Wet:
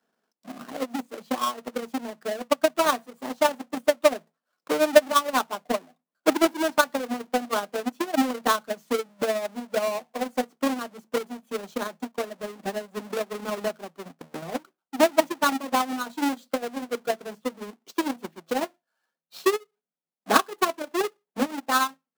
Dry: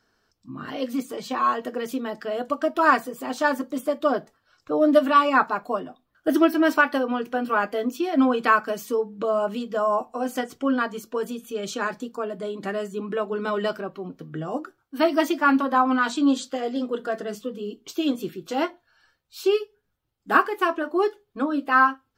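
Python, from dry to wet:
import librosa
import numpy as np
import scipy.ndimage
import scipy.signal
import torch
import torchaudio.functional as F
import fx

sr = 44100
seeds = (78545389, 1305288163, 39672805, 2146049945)

y = fx.halfwave_hold(x, sr)
y = scipy.signal.sosfilt(scipy.signal.cheby1(6, 6, 160.0, 'highpass', fs=sr, output='sos'), y)
y = fx.transient(y, sr, attack_db=12, sustain_db=-7)
y = y * 10.0 ** (-9.0 / 20.0)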